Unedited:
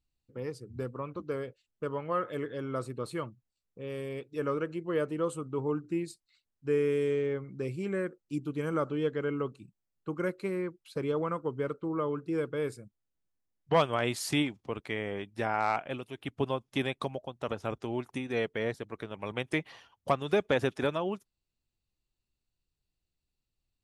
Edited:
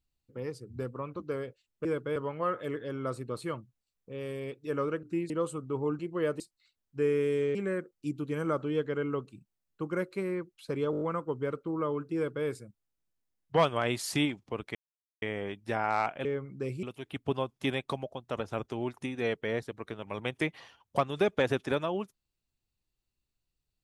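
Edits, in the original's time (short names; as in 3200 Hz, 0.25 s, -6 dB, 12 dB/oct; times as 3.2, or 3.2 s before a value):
4.72–5.13 swap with 5.82–6.09
7.24–7.82 move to 15.95
11.18 stutter 0.02 s, 6 plays
12.32–12.63 copy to 1.85
14.92 insert silence 0.47 s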